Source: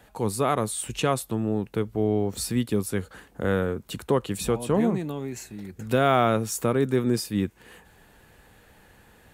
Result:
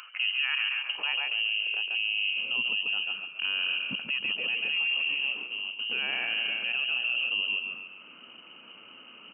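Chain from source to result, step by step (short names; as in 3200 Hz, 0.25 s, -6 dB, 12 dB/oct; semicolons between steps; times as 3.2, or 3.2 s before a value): G.711 law mismatch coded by A; bell 970 Hz -14.5 dB 1.8 oct; notches 60/120/180/240 Hz; in parallel at -2 dB: upward compressor, threshold -31 dBFS; on the sum: HPF 75 Hz; on a send: frequency-shifting echo 0.138 s, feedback 47%, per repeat +32 Hz, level -8 dB; on the sum: inverted band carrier 3000 Hz; limiter -21 dBFS, peak gain reduction 11.5 dB; high-pass sweep 1300 Hz -> 220 Hz, 0.71–2.33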